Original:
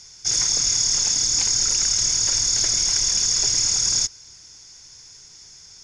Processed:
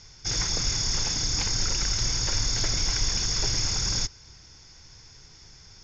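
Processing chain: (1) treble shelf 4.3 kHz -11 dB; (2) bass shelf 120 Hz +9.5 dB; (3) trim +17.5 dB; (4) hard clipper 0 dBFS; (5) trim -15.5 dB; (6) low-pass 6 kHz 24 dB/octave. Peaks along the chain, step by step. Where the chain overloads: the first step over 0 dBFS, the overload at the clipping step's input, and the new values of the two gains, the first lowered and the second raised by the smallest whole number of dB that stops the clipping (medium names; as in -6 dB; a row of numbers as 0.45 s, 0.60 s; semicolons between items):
-14.0 dBFS, -12.0 dBFS, +5.5 dBFS, 0.0 dBFS, -15.5 dBFS, -14.5 dBFS; step 3, 5.5 dB; step 3 +11.5 dB, step 5 -9.5 dB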